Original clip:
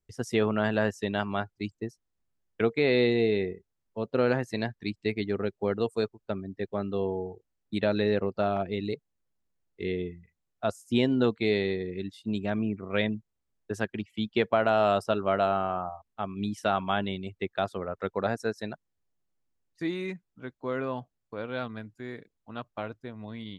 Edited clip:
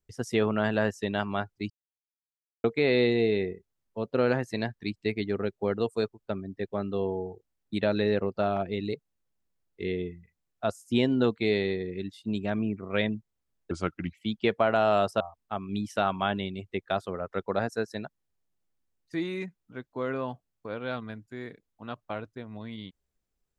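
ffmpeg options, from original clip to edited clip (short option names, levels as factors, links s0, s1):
-filter_complex "[0:a]asplit=6[s0][s1][s2][s3][s4][s5];[s0]atrim=end=1.7,asetpts=PTS-STARTPTS,afade=t=out:st=1.696:d=0.004:c=hsin[s6];[s1]atrim=start=1.7:end=2.64,asetpts=PTS-STARTPTS,volume=0[s7];[s2]atrim=start=2.64:end=13.714,asetpts=PTS-STARTPTS,afade=t=in:d=0.004:c=hsin[s8];[s3]atrim=start=13.71:end=14.07,asetpts=PTS-STARTPTS,asetrate=36603,aresample=44100[s9];[s4]atrim=start=14.066:end=15.132[s10];[s5]atrim=start=15.878[s11];[s6][s7][s8]concat=n=3:v=0:a=1[s12];[s12][s9]acrossfade=d=0.004:c1=hsin:c2=hsin[s13];[s13][s10]acrossfade=d=0.004:c1=hsin:c2=hsin[s14];[s14][s11]acrossfade=d=0.004:c1=hsin:c2=hsin"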